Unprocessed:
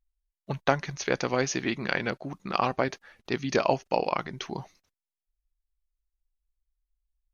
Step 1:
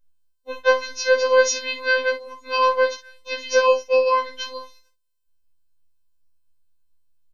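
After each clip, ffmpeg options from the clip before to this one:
-af "afftfilt=real='hypot(re,im)*cos(PI*b)':imag='0':win_size=1024:overlap=0.75,aecho=1:1:22|52:0.376|0.316,afftfilt=real='re*3.46*eq(mod(b,12),0)':imag='im*3.46*eq(mod(b,12),0)':win_size=2048:overlap=0.75,volume=8.5dB"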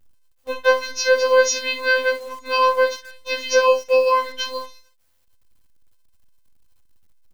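-filter_complex "[0:a]asplit=2[a][b];[b]acompressor=threshold=-26dB:ratio=6,volume=1dB[c];[a][c]amix=inputs=2:normalize=0,acrusher=bits=8:dc=4:mix=0:aa=0.000001,volume=-1dB"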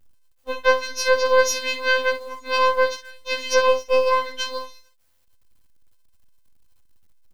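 -af "aeval=exprs='if(lt(val(0),0),0.447*val(0),val(0))':c=same"

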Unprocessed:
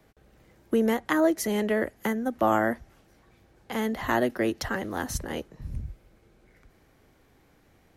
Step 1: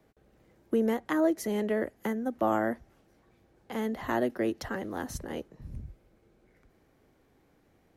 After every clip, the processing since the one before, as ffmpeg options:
-af "equalizer=f=350:w=0.43:g=5.5,volume=-8dB"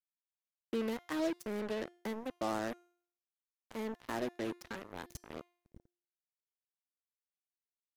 -af "acrusher=bits=4:mix=0:aa=0.5,bandreject=f=350.6:t=h:w=4,bandreject=f=701.2:t=h:w=4,bandreject=f=1.0518k:t=h:w=4,bandreject=f=1.4024k:t=h:w=4,bandreject=f=1.753k:t=h:w=4,bandreject=f=2.1036k:t=h:w=4,bandreject=f=2.4542k:t=h:w=4,bandreject=f=2.8048k:t=h:w=4,bandreject=f=3.1554k:t=h:w=4,bandreject=f=3.506k:t=h:w=4,bandreject=f=3.8566k:t=h:w=4,bandreject=f=4.2072k:t=h:w=4,bandreject=f=4.5578k:t=h:w=4,bandreject=f=4.9084k:t=h:w=4,bandreject=f=5.259k:t=h:w=4,bandreject=f=5.6096k:t=h:w=4,bandreject=f=5.9602k:t=h:w=4,bandreject=f=6.3108k:t=h:w=4,bandreject=f=6.6614k:t=h:w=4,bandreject=f=7.012k:t=h:w=4,bandreject=f=7.3626k:t=h:w=4,bandreject=f=7.7132k:t=h:w=4,bandreject=f=8.0638k:t=h:w=4,bandreject=f=8.4144k:t=h:w=4,bandreject=f=8.765k:t=h:w=4,bandreject=f=9.1156k:t=h:w=4,bandreject=f=9.4662k:t=h:w=4,bandreject=f=9.8168k:t=h:w=4,bandreject=f=10.1674k:t=h:w=4,bandreject=f=10.518k:t=h:w=4,bandreject=f=10.8686k:t=h:w=4,bandreject=f=11.2192k:t=h:w=4,bandreject=f=11.5698k:t=h:w=4,bandreject=f=11.9204k:t=h:w=4,bandreject=f=12.271k:t=h:w=4,bandreject=f=12.6216k:t=h:w=4,bandreject=f=12.9722k:t=h:w=4,bandreject=f=13.3228k:t=h:w=4,bandreject=f=13.6734k:t=h:w=4,volume=-9dB"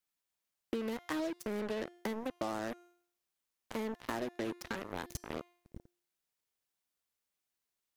-af "acompressor=threshold=-42dB:ratio=6,volume=8dB"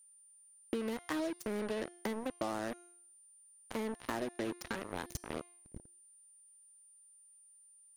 -af "aeval=exprs='val(0)+0.00112*sin(2*PI*9200*n/s)':c=same"

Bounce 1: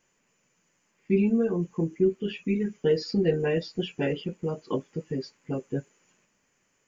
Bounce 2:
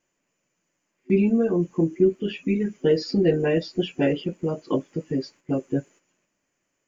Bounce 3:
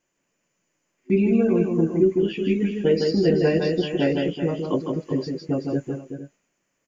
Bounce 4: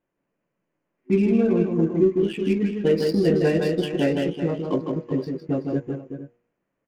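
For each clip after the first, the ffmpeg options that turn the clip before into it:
-af "agate=range=-9dB:threshold=-53dB:ratio=16:detection=peak,superequalizer=6b=1.78:8b=1.58,volume=3dB"
-af "aecho=1:1:157|380|454|475:0.631|0.316|0.133|0.119"
-af "bandreject=f=119.4:t=h:w=4,bandreject=f=238.8:t=h:w=4,bandreject=f=358.2:t=h:w=4,bandreject=f=477.6:t=h:w=4,bandreject=f=597:t=h:w=4,bandreject=f=716.4:t=h:w=4,bandreject=f=835.8:t=h:w=4,bandreject=f=955.2:t=h:w=4,bandreject=f=1.0746k:t=h:w=4,bandreject=f=1.194k:t=h:w=4,bandreject=f=1.3134k:t=h:w=4,bandreject=f=1.4328k:t=h:w=4,bandreject=f=1.5522k:t=h:w=4,bandreject=f=1.6716k:t=h:w=4,bandreject=f=1.791k:t=h:w=4,bandreject=f=1.9104k:t=h:w=4,bandreject=f=2.0298k:t=h:w=4,bandreject=f=2.1492k:t=h:w=4,bandreject=f=2.2686k:t=h:w=4,bandreject=f=2.388k:t=h:w=4,adynamicsmooth=sensitivity=7:basefreq=1.6k"

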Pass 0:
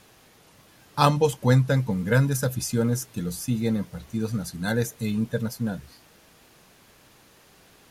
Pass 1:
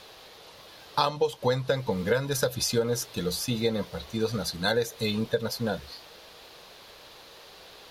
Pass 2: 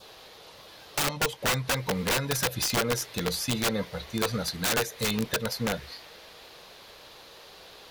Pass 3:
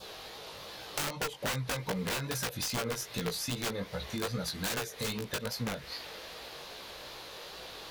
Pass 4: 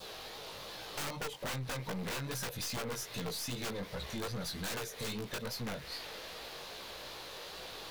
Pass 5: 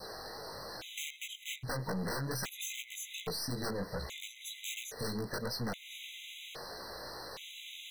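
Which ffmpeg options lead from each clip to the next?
-af "equalizer=f=125:t=o:w=1:g=-5,equalizer=f=250:t=o:w=1:g=-6,equalizer=f=500:t=o:w=1:g=8,equalizer=f=1k:t=o:w=1:g=4,equalizer=f=4k:t=o:w=1:g=12,equalizer=f=8k:t=o:w=1:g=-5,acompressor=threshold=-23dB:ratio=8,volume=1.5dB"
-af "adynamicequalizer=threshold=0.00316:dfrequency=2000:dqfactor=2.3:tfrequency=2000:tqfactor=2.3:attack=5:release=100:ratio=0.375:range=3.5:mode=boostabove:tftype=bell,aeval=exprs='(mod(9.44*val(0)+1,2)-1)/9.44':c=same"
-af "acompressor=threshold=-37dB:ratio=4,flanger=delay=15.5:depth=5.8:speed=2.5,volume=6.5dB"
-af "aeval=exprs='(tanh(63.1*val(0)+0.35)-tanh(0.35))/63.1':c=same,aeval=exprs='val(0)*gte(abs(val(0)),0.00141)':c=same,volume=1dB"
-af "afftfilt=real='re*gt(sin(2*PI*0.61*pts/sr)*(1-2*mod(floor(b*sr/1024/2000),2)),0)':imag='im*gt(sin(2*PI*0.61*pts/sr)*(1-2*mod(floor(b*sr/1024/2000),2)),0)':win_size=1024:overlap=0.75,volume=3dB"

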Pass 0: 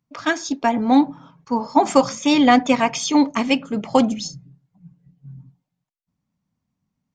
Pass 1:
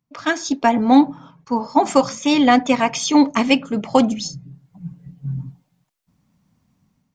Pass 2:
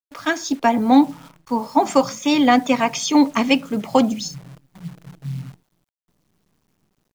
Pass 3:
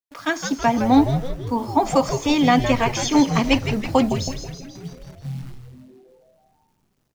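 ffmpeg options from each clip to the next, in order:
-af "dynaudnorm=f=170:g=5:m=14.5dB,volume=-1dB"
-filter_complex "[0:a]acrossover=split=100|440|2000[a][b][c][d];[a]alimiter=level_in=16.5dB:limit=-24dB:level=0:latency=1:release=265,volume=-16.5dB[e];[e][b][c][d]amix=inputs=4:normalize=0,acrusher=bits=8:dc=4:mix=0:aa=0.000001,volume=-1dB"
-filter_complex "[0:a]asplit=9[a][b][c][d][e][f][g][h][i];[b]adelay=162,afreqshift=-130,volume=-8dB[j];[c]adelay=324,afreqshift=-260,volume=-12.4dB[k];[d]adelay=486,afreqshift=-390,volume=-16.9dB[l];[e]adelay=648,afreqshift=-520,volume=-21.3dB[m];[f]adelay=810,afreqshift=-650,volume=-25.7dB[n];[g]adelay=972,afreqshift=-780,volume=-30.2dB[o];[h]adelay=1134,afreqshift=-910,volume=-34.6dB[p];[i]adelay=1296,afreqshift=-1040,volume=-39.1dB[q];[a][j][k][l][m][n][o][p][q]amix=inputs=9:normalize=0,volume=-2dB"

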